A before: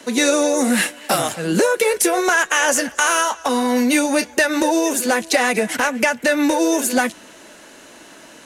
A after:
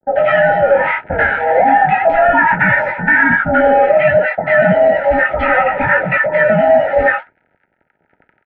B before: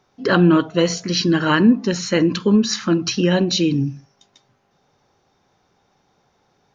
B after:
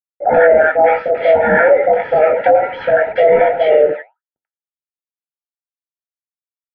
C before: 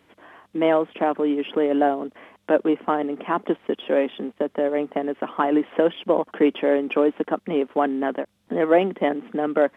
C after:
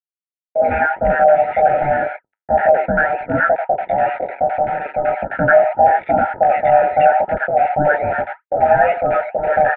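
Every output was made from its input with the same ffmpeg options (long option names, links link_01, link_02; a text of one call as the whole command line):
ffmpeg -i in.wav -filter_complex "[0:a]afftfilt=real='real(if(lt(b,1008),b+24*(1-2*mod(floor(b/24),2)),b),0)':imag='imag(if(lt(b,1008),b+24*(1-2*mod(floor(b/24),2)),b),0)':win_size=2048:overlap=0.75,tiltshelf=frequency=740:gain=-6.5,acontrast=74,flanger=delay=18:depth=3:speed=0.34,acrusher=bits=3:mix=0:aa=0.5,flanger=delay=2.3:depth=9.2:regen=75:speed=1.9:shape=triangular,asuperstop=centerf=1300:order=20:qfactor=4.5,acrossover=split=1100[link_01][link_02];[link_02]adelay=90[link_03];[link_01][link_03]amix=inputs=2:normalize=0,highpass=frequency=290:width_type=q:width=0.5412,highpass=frequency=290:width_type=q:width=1.307,lowpass=frequency=2100:width_type=q:width=0.5176,lowpass=frequency=2100:width_type=q:width=0.7071,lowpass=frequency=2100:width_type=q:width=1.932,afreqshift=-200,alimiter=level_in=12dB:limit=-1dB:release=50:level=0:latency=1,volume=-1dB" out.wav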